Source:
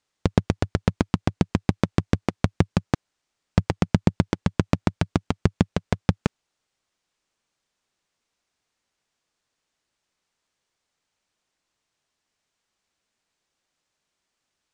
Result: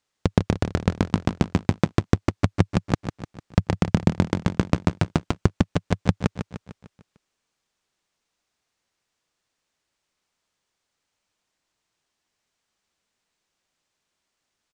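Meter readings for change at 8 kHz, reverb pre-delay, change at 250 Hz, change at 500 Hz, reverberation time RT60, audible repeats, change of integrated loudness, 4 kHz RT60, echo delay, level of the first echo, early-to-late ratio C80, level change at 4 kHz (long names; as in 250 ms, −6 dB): +1.0 dB, no reverb audible, +0.5 dB, +1.0 dB, no reverb audible, 5, +1.0 dB, no reverb audible, 150 ms, −8.5 dB, no reverb audible, +0.5 dB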